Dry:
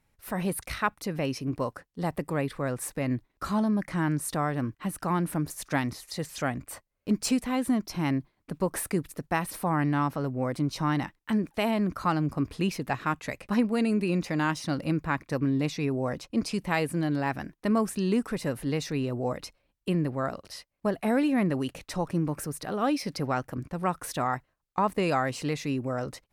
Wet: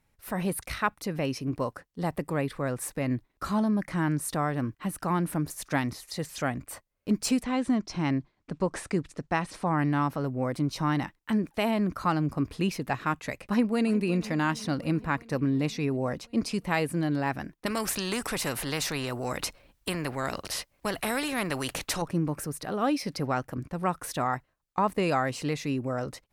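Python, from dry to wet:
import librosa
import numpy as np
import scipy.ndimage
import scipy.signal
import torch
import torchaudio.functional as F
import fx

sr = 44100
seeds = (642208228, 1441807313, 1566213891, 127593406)

y = fx.lowpass(x, sr, hz=7700.0, slope=24, at=(7.43, 9.78))
y = fx.echo_throw(y, sr, start_s=13.46, length_s=0.5, ms=360, feedback_pct=70, wet_db=-17.5)
y = fx.spectral_comp(y, sr, ratio=2.0, at=(17.66, 22.02))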